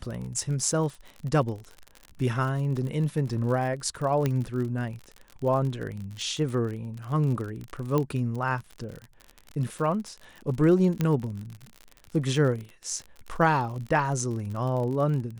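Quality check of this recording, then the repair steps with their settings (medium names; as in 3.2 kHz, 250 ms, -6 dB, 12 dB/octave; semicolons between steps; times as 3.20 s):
crackle 47 per s -33 dBFS
4.26 s: pop -13 dBFS
7.98 s: pop -14 dBFS
11.01 s: pop -13 dBFS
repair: de-click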